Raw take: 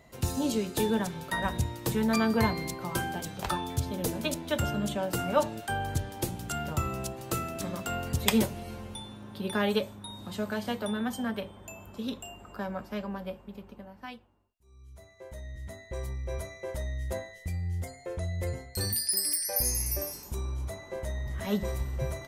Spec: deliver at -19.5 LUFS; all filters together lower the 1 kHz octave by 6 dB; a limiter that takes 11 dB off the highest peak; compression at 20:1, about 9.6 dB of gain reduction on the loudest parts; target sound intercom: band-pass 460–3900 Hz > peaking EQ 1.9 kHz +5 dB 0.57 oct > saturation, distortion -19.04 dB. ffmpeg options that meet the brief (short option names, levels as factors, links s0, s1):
-af "equalizer=f=1000:t=o:g=-8.5,acompressor=threshold=0.0282:ratio=20,alimiter=level_in=1.41:limit=0.0631:level=0:latency=1,volume=0.708,highpass=460,lowpass=3900,equalizer=f=1900:t=o:w=0.57:g=5,asoftclip=threshold=0.0224,volume=17.8"